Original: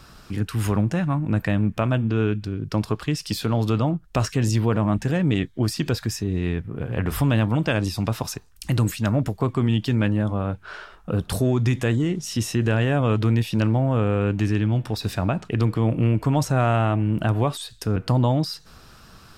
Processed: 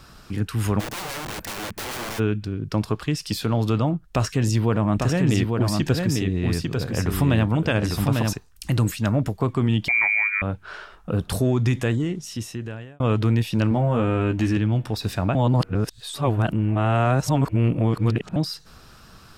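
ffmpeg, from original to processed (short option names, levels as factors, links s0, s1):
-filter_complex "[0:a]asplit=3[s0][s1][s2];[s0]afade=t=out:st=0.79:d=0.02[s3];[s1]aeval=exprs='(mod(21.1*val(0)+1,2)-1)/21.1':c=same,afade=t=in:st=0.79:d=0.02,afade=t=out:st=2.18:d=0.02[s4];[s2]afade=t=in:st=2.18:d=0.02[s5];[s3][s4][s5]amix=inputs=3:normalize=0,asettb=1/sr,asplit=3[s6][s7][s8];[s6]atrim=end=4.014[s9];[s7]atrim=start=4.01:end=8.33,asetpts=PTS-STARTPTS,afade=t=in:d=0.004:c=qsin,afade=t=out:st=4.316:d=0.004:c=qsin,aecho=1:1:848:0.668,atrim=end_sample=190512[s10];[s8]atrim=start=8.326[s11];[s9][s10]acrossfade=d=0.004:c1=hsin:c2=qsin[s12];[s12][s11]acrossfade=d=0.004:c1=qsin:c2=hsin,asettb=1/sr,asplit=3[s13][s14][s15];[s13]atrim=end=9.884[s16];[s14]atrim=start=9.88:end=10.42,asetpts=PTS-STARTPTS,afade=t=in:d=0.004:c=qsin,afade=t=out:st=0.536:d=0.004:c=qsin,lowpass=f=2100:t=q:w=0.5098,lowpass=f=2100:t=q:w=0.6013,lowpass=f=2100:t=q:w=0.9,lowpass=f=2100:t=q:w=2.563,afreqshift=-2500[s17];[s15]atrim=start=10.416[s18];[s16][s17]acrossfade=d=0.004:c1=hsin:c2=qsin[s19];[s19][s18]acrossfade=d=0.004:c1=qsin:c2=hsin,asettb=1/sr,asplit=3[s20][s21][s22];[s20]atrim=end=13.704[s23];[s21]atrim=start=13.7:end=14.57,asetpts=PTS-STARTPTS,afade=t=in:d=0.004:c=qsin,afade=t=out:st=0.866:d=0.004:c=qsin,asplit=2[s24][s25];[s25]adelay=13,volume=0.668[s26];[s24][s26]amix=inputs=2:normalize=0,atrim=end_sample=38367[s27];[s22]atrim=start=14.566[s28];[s23][s27]acrossfade=d=0.004:c1=hsin:c2=qsin[s29];[s29][s28]acrossfade=d=0.004:c1=qsin:c2=hsin,asplit=4[s30][s31][s32][s33];[s30]atrim=end=13,asetpts=PTS-STARTPTS,afade=t=out:st=11.77:d=1.23[s34];[s31]atrim=start=13:end=15.352,asetpts=PTS-STARTPTS,afade=t=in:d=0.004:c=hsin[s35];[s32]atrim=start=15.348:end=18.362,asetpts=PTS-STARTPTS,areverse[s36];[s33]atrim=start=18.358[s37];[s34][s35]concat=n=2:v=0:a=1[s38];[s38][s36]acrossfade=d=0.004:c1=hsin:c2=hsin[s39];[s39][s37]acrossfade=d=0.004:c1=hsin:c2=hsin"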